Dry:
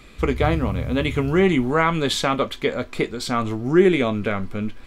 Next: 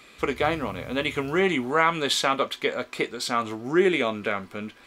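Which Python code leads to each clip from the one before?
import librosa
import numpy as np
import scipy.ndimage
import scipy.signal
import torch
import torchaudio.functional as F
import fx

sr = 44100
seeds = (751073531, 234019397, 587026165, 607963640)

y = fx.highpass(x, sr, hz=560.0, slope=6)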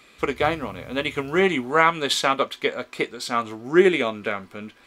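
y = fx.upward_expand(x, sr, threshold_db=-30.0, expansion=1.5)
y = y * librosa.db_to_amplitude(5.5)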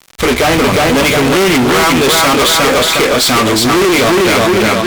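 y = fx.echo_feedback(x, sr, ms=359, feedback_pct=29, wet_db=-4)
y = fx.fuzz(y, sr, gain_db=41.0, gate_db=-45.0)
y = y * librosa.db_to_amplitude(4.5)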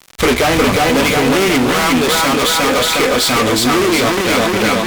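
y = fx.rider(x, sr, range_db=10, speed_s=0.5)
y = y + 10.0 ** (-6.0 / 20.0) * np.pad(y, (int(363 * sr / 1000.0), 0))[:len(y)]
y = y * librosa.db_to_amplitude(-4.0)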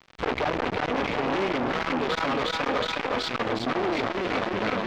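y = fx.air_absorb(x, sr, metres=220.0)
y = fx.transformer_sat(y, sr, knee_hz=950.0)
y = y * librosa.db_to_amplitude(-7.0)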